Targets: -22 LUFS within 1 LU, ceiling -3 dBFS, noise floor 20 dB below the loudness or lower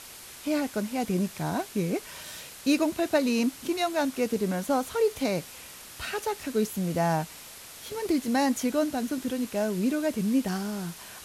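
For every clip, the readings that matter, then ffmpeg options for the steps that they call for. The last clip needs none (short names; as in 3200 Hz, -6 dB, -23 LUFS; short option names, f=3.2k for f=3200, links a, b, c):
noise floor -46 dBFS; noise floor target -49 dBFS; loudness -28.5 LUFS; peak -11.5 dBFS; loudness target -22.0 LUFS
-> -af "afftdn=nr=6:nf=-46"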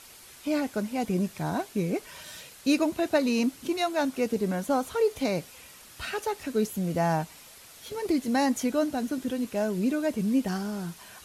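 noise floor -50 dBFS; loudness -28.5 LUFS; peak -11.5 dBFS; loudness target -22.0 LUFS
-> -af "volume=6.5dB"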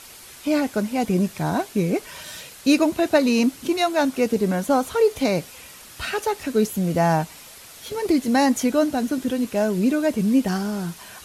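loudness -22.0 LUFS; peak -5.0 dBFS; noise floor -44 dBFS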